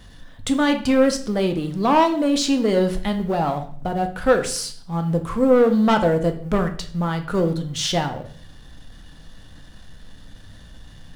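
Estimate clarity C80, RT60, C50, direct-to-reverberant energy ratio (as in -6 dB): 15.5 dB, 0.55 s, 11.5 dB, 5.0 dB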